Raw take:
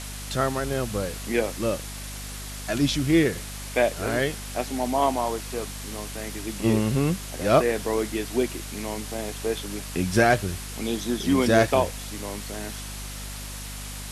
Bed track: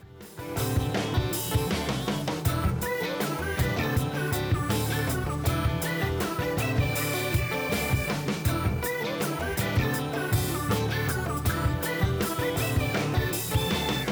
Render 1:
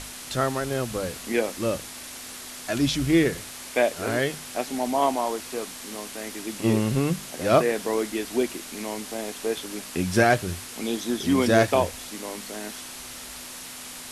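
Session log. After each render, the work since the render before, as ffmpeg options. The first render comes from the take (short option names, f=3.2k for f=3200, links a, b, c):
-af "bandreject=f=50:t=h:w=6,bandreject=f=100:t=h:w=6,bandreject=f=150:t=h:w=6,bandreject=f=200:t=h:w=6"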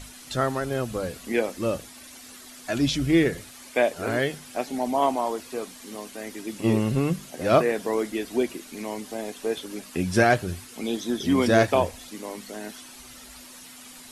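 -af "afftdn=nr=10:nf=-40"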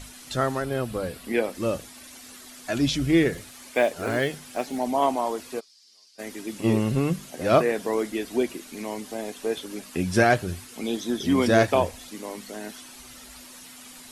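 -filter_complex "[0:a]asettb=1/sr,asplit=3[a][b][c];[a]atrim=end=0.624[d];[b]atrim=start=0.62:end=1.55,asetpts=PTS-STARTPTS,afade=t=in:d=0.004:c=qsin,afade=t=out:st=0.926:d=0.004:c=qsin,equalizer=f=6.5k:w=3.3:g=-8.5[e];[c]atrim=start=1.546[f];[d][e]acrossfade=d=0.004:c1=hsin:c2=qsin[g];[g][f]acrossfade=d=0.004:c1=qsin:c2=hsin,asettb=1/sr,asplit=3[h][i][j];[h]atrim=end=3.314[k];[i]atrim=start=3.31:end=4.8,asetpts=PTS-STARTPTS,afade=t=in:d=0.004:c=qsin,afade=t=out:st=1.486:d=0.004:c=qsin,acrusher=bits=8:mode=log:mix=0:aa=0.000001[l];[j]atrim=start=4.796[m];[k][l]acrossfade=d=0.004:c1=hsin:c2=qsin[n];[n][m]acrossfade=d=0.004:c1=qsin:c2=hsin,asplit=3[o][p][q];[o]afade=t=out:st=5.59:d=0.02[r];[p]bandpass=f=4.9k:t=q:w=6.6,afade=t=in:st=5.59:d=0.02,afade=t=out:st=6.18:d=0.02[s];[q]afade=t=in:st=6.18:d=0.02[t];[r][s][t]amix=inputs=3:normalize=0"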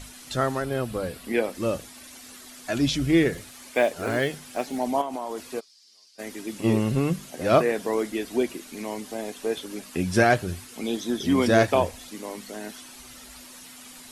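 -filter_complex "[0:a]asettb=1/sr,asplit=3[a][b][c];[a]atrim=end=5.014[d];[b]atrim=start=5.01:end=5.48,asetpts=PTS-STARTPTS,afade=t=in:d=0.004:c=qsin,afade=t=out:st=0.466:d=0.004:c=qsin,acompressor=threshold=-26dB:ratio=12:attack=3.2:release=140:knee=1:detection=peak[e];[c]atrim=start=5.476[f];[d][e]acrossfade=d=0.004:c1=hsin:c2=qsin[g];[g][f]acrossfade=d=0.004:c1=qsin:c2=hsin"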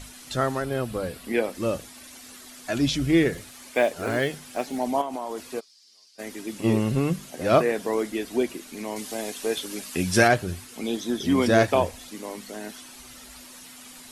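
-filter_complex "[0:a]asettb=1/sr,asplit=3[a][b][c];[a]atrim=end=8.964[d];[b]atrim=start=8.96:end=10.28,asetpts=PTS-STARTPTS,afade=t=in:d=0.004:c=qsin,afade=t=out:st=1.316:d=0.004:c=qsin,highshelf=f=2.1k:g=7.5[e];[c]atrim=start=10.276[f];[d][e]acrossfade=d=0.004:c1=hsin:c2=qsin[g];[g][f]acrossfade=d=0.004:c1=qsin:c2=hsin"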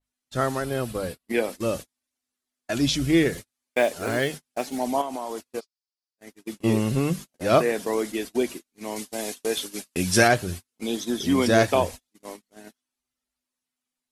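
-af "agate=range=-42dB:threshold=-33dB:ratio=16:detection=peak,adynamicequalizer=threshold=0.00891:dfrequency=3300:dqfactor=0.7:tfrequency=3300:tqfactor=0.7:attack=5:release=100:ratio=0.375:range=2:mode=boostabove:tftype=highshelf"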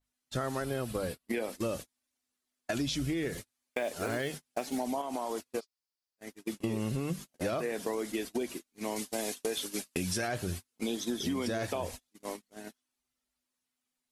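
-af "alimiter=limit=-16dB:level=0:latency=1:release=42,acompressor=threshold=-30dB:ratio=6"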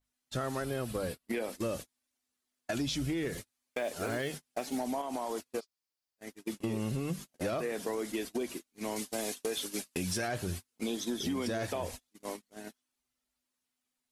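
-af "asoftclip=type=tanh:threshold=-23.5dB"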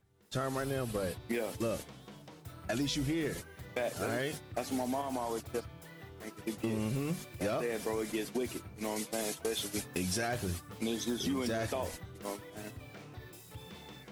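-filter_complex "[1:a]volume=-22.5dB[a];[0:a][a]amix=inputs=2:normalize=0"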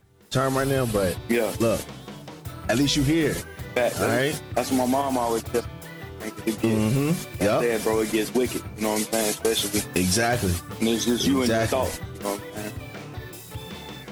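-af "volume=12dB"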